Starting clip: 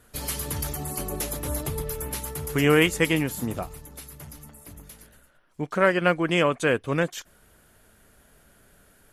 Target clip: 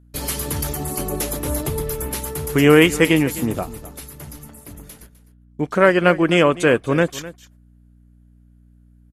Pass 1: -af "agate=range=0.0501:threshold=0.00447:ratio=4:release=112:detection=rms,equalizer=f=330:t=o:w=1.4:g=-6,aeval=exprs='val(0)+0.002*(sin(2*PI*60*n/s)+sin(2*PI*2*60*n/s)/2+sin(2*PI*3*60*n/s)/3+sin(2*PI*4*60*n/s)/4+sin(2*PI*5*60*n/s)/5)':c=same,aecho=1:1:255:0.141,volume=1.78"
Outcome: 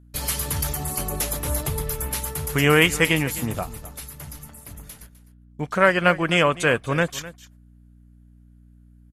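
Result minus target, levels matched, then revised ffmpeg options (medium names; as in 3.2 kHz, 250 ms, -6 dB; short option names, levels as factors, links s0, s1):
250 Hz band -4.5 dB
-af "agate=range=0.0501:threshold=0.00447:ratio=4:release=112:detection=rms,equalizer=f=330:t=o:w=1.4:g=3.5,aeval=exprs='val(0)+0.002*(sin(2*PI*60*n/s)+sin(2*PI*2*60*n/s)/2+sin(2*PI*3*60*n/s)/3+sin(2*PI*4*60*n/s)/4+sin(2*PI*5*60*n/s)/5)':c=same,aecho=1:1:255:0.141,volume=1.78"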